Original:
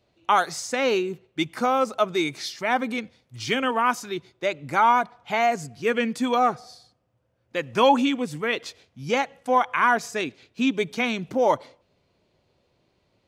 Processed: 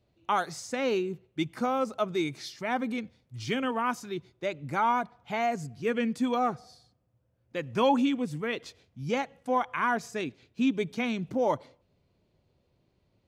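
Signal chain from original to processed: low shelf 290 Hz +10.5 dB; gain -8.5 dB

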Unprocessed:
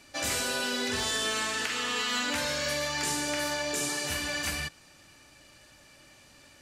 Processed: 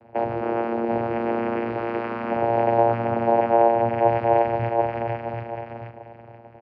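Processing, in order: feedback echo 0.478 s, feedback 36%, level -7.5 dB; in parallel at -7 dB: bit-crush 6-bit; on the sum: limiter -22.5 dBFS, peak gain reduction 7 dB; LPF 1700 Hz 24 dB/oct; bell 580 Hz +13.5 dB 0.64 oct; echo 0.741 s -4 dB; vocoder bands 8, saw 116 Hz; gain +4.5 dB

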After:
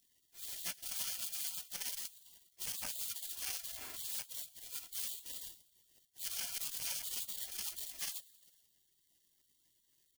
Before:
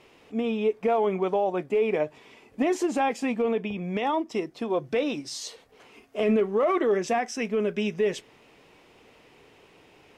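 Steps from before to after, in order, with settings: FFT order left unsorted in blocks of 128 samples; HPF 770 Hz 12 dB/oct; notch 1300 Hz, Q 11; low-pass opened by the level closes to 1100 Hz, open at -20 dBFS; bell 1300 Hz +12 dB 1 oct; harmonic-percussive split percussive +6 dB; transient shaper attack -7 dB, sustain +5 dB; limiter -22.5 dBFS, peak gain reduction 11.5 dB; sample-rate reducer 3800 Hz, jitter 0%; on a send: feedback echo 0.111 s, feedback 59%, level -23 dB; on the sum: spectral gate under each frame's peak -25 dB weak; core saturation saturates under 2300 Hz; gain +5.5 dB

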